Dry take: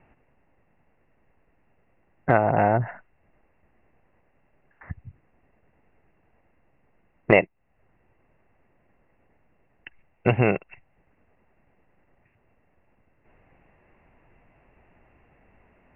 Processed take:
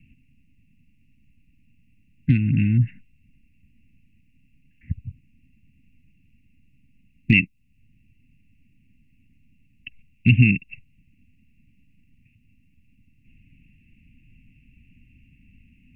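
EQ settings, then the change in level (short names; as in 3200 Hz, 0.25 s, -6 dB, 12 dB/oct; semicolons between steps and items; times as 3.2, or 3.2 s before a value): dynamic EQ 1100 Hz, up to +4 dB, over -34 dBFS, Q 0.82; Chebyshev band-stop 260–2500 Hz, order 4; +8.5 dB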